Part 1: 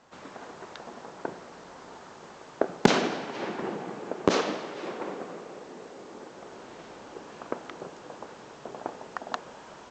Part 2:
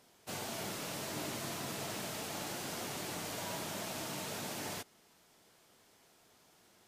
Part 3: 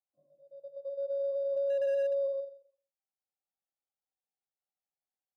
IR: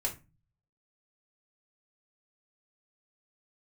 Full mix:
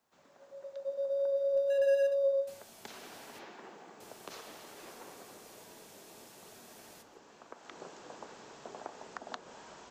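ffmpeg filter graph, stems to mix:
-filter_complex "[0:a]acrossover=split=210|600[link_01][link_02][link_03];[link_01]acompressor=threshold=-58dB:ratio=4[link_04];[link_02]acompressor=threshold=-42dB:ratio=4[link_05];[link_03]acompressor=threshold=-35dB:ratio=4[link_06];[link_04][link_05][link_06]amix=inputs=3:normalize=0,volume=-6.5dB,afade=type=in:start_time=2.61:duration=0.45:silence=0.421697,afade=type=in:start_time=7.49:duration=0.36:silence=0.421697,asplit=2[link_07][link_08];[link_08]volume=-19dB[link_09];[1:a]agate=range=-14dB:threshold=-59dB:ratio=16:detection=peak,acompressor=threshold=-52dB:ratio=2,adelay=2200,volume=-13dB,asplit=3[link_10][link_11][link_12];[link_10]atrim=end=3.39,asetpts=PTS-STARTPTS,afade=type=out:start_time=3.386:duration=0.004:curve=hsin[link_13];[link_11]atrim=start=3.39:end=4,asetpts=PTS-STARTPTS,volume=0[link_14];[link_12]atrim=start=4,asetpts=PTS-STARTPTS,afade=type=in:duration=0.004:curve=hsin[link_15];[link_13][link_14][link_15]concat=n=3:v=0:a=1,asplit=2[link_16][link_17];[link_17]volume=-7dB[link_18];[2:a]volume=0.5dB,asplit=2[link_19][link_20];[link_20]volume=-5.5dB[link_21];[3:a]atrim=start_sample=2205[link_22];[link_09][link_18][link_21]amix=inputs=3:normalize=0[link_23];[link_23][link_22]afir=irnorm=-1:irlink=0[link_24];[link_07][link_16][link_19][link_24]amix=inputs=4:normalize=0,highshelf=frequency=4200:gain=7"

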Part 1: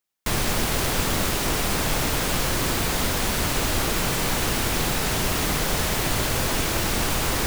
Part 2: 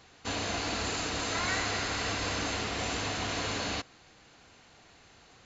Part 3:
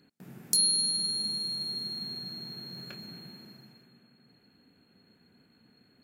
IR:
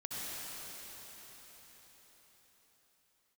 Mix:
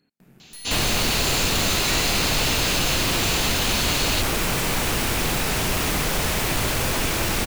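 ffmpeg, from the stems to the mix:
-filter_complex "[0:a]adelay=450,volume=1.5dB[link_01];[1:a]highshelf=frequency=2300:width_type=q:width=1.5:gain=9.5,adelay=400,volume=1dB[link_02];[2:a]aeval=exprs='(tanh(70.8*val(0)+0.6)-tanh(0.6))/70.8':channel_layout=same,volume=-2.5dB[link_03];[link_01][link_02][link_03]amix=inputs=3:normalize=0,asoftclip=type=tanh:threshold=-13.5dB,equalizer=frequency=2500:width=3.3:gain=3"

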